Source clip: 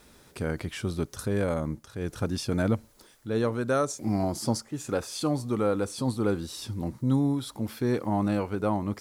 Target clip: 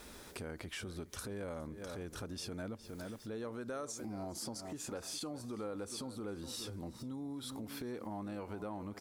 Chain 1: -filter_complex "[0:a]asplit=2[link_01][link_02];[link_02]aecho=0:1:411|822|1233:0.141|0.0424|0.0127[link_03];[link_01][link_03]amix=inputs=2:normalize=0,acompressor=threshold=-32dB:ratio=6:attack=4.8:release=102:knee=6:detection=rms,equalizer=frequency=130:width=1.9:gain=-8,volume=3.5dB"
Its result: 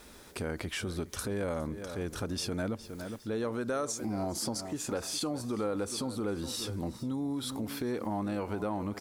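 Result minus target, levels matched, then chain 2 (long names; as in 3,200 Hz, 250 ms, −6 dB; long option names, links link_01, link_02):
downward compressor: peak gain reduction −9 dB
-filter_complex "[0:a]asplit=2[link_01][link_02];[link_02]aecho=0:1:411|822|1233:0.141|0.0424|0.0127[link_03];[link_01][link_03]amix=inputs=2:normalize=0,acompressor=threshold=-43dB:ratio=6:attack=4.8:release=102:knee=6:detection=rms,equalizer=frequency=130:width=1.9:gain=-8,volume=3.5dB"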